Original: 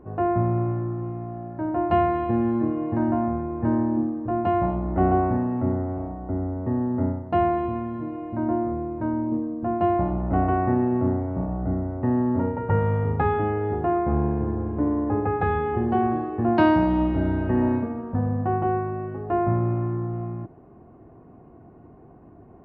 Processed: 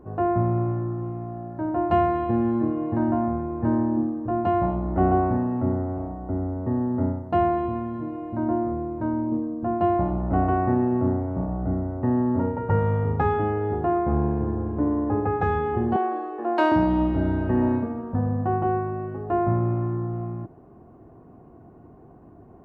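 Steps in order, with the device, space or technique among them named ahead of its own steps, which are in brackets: exciter from parts (in parallel at -6.5 dB: HPF 2100 Hz 24 dB/oct + soft clip -39.5 dBFS, distortion -12 dB); 15.96–16.72 on the sum: HPF 360 Hz 24 dB/oct

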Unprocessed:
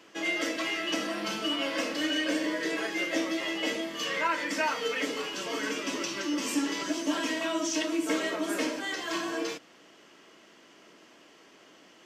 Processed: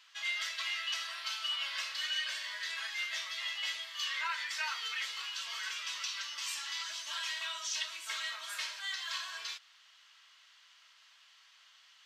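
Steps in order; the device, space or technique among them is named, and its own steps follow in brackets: headphones lying on a table (HPF 1100 Hz 24 dB/oct; bell 3900 Hz +10 dB 0.59 oct); gain -6 dB

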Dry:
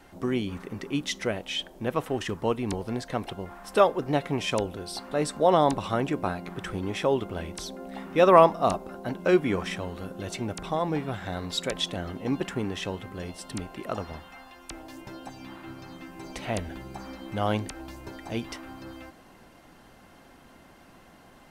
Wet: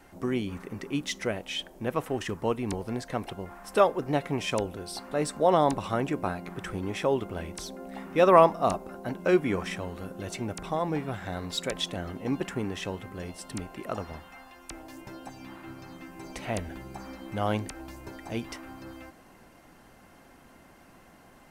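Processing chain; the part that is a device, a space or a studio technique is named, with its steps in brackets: exciter from parts (in parallel at -9 dB: HPF 2600 Hz 24 dB/oct + soft clip -34.5 dBFS, distortion -7 dB + HPF 2100 Hz); on the sum: gain -1.5 dB

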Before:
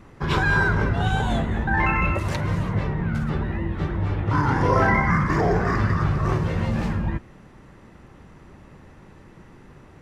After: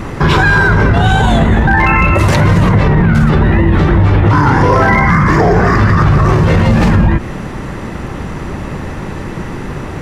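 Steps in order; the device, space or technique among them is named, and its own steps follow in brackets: loud club master (compressor 2.5:1, threshold -23 dBFS, peak gain reduction 6.5 dB; hard clip -17 dBFS, distortion -29 dB; maximiser +26 dB); gain -1 dB

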